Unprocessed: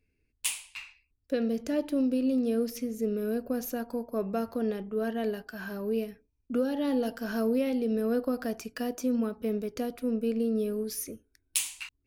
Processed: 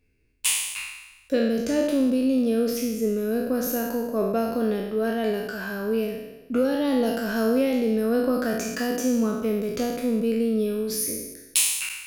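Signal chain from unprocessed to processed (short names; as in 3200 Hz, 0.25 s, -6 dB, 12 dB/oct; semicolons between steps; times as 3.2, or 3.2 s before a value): spectral trails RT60 1.05 s; 7.36–8.87 bell 6800 Hz +6 dB 0.22 oct; gain +4.5 dB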